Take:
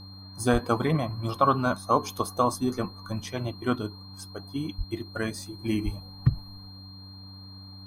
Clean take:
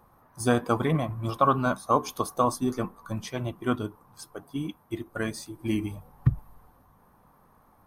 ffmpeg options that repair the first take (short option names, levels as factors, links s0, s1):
-filter_complex "[0:a]bandreject=f=96.2:t=h:w=4,bandreject=f=192.4:t=h:w=4,bandreject=f=288.6:t=h:w=4,bandreject=f=4200:w=30,asplit=3[s0][s1][s2];[s0]afade=t=out:st=0.52:d=0.02[s3];[s1]highpass=f=140:w=0.5412,highpass=f=140:w=1.3066,afade=t=in:st=0.52:d=0.02,afade=t=out:st=0.64:d=0.02[s4];[s2]afade=t=in:st=0.64:d=0.02[s5];[s3][s4][s5]amix=inputs=3:normalize=0,asplit=3[s6][s7][s8];[s6]afade=t=out:st=4.77:d=0.02[s9];[s7]highpass=f=140:w=0.5412,highpass=f=140:w=1.3066,afade=t=in:st=4.77:d=0.02,afade=t=out:st=4.89:d=0.02[s10];[s8]afade=t=in:st=4.89:d=0.02[s11];[s9][s10][s11]amix=inputs=3:normalize=0,asplit=3[s12][s13][s14];[s12]afade=t=out:st=5.84:d=0.02[s15];[s13]highpass=f=140:w=0.5412,highpass=f=140:w=1.3066,afade=t=in:st=5.84:d=0.02,afade=t=out:st=5.96:d=0.02[s16];[s14]afade=t=in:st=5.96:d=0.02[s17];[s15][s16][s17]amix=inputs=3:normalize=0"